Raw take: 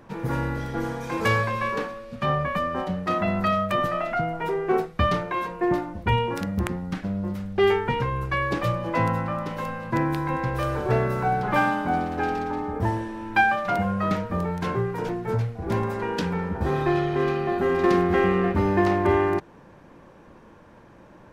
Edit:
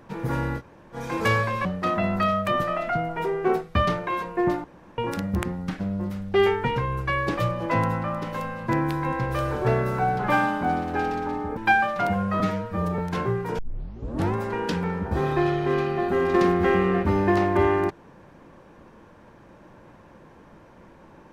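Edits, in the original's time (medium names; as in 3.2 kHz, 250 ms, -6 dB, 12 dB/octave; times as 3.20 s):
0.59–0.95 s: room tone, crossfade 0.06 s
1.65–2.89 s: delete
5.88–6.22 s: room tone
12.81–13.26 s: delete
14.09–14.48 s: stretch 1.5×
15.08 s: tape start 0.76 s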